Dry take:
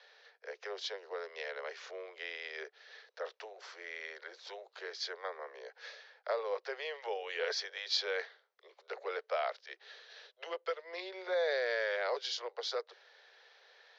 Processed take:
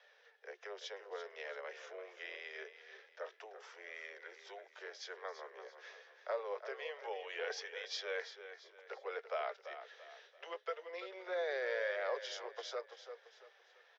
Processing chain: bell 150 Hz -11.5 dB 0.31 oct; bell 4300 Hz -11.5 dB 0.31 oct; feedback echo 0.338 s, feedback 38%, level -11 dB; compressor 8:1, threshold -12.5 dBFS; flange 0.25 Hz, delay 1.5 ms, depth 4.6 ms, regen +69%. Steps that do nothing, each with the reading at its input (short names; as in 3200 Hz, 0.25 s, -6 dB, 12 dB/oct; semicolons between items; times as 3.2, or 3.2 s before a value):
bell 150 Hz: input band starts at 340 Hz; compressor, threshold -12.5 dBFS: input peak -21.5 dBFS